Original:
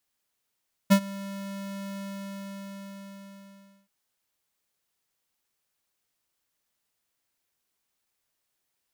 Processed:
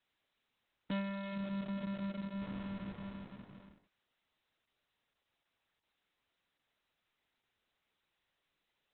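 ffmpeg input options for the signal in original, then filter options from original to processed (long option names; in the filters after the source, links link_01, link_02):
-f lavfi -i "aevalsrc='0.178*(2*lt(mod(197*t,1),0.5)-1)':duration=2.98:sample_rate=44100,afade=type=in:duration=0.021,afade=type=out:start_time=0.021:duration=0.075:silence=0.0841,afade=type=out:start_time=1.06:duration=1.92"
-af "asoftclip=type=tanh:threshold=-32.5dB" -ar 48000 -c:a libopus -b:a 6k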